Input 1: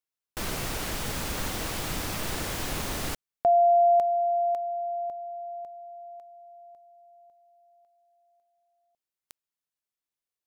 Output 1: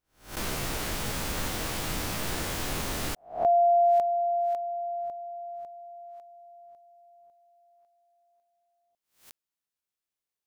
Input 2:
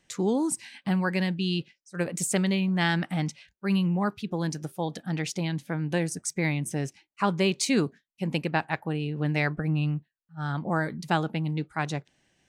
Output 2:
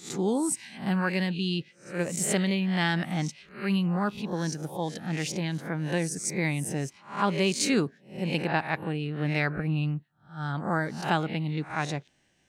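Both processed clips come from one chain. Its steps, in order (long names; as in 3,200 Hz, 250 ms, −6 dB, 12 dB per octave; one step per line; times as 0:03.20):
peak hold with a rise ahead of every peak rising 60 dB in 0.39 s
level −1.5 dB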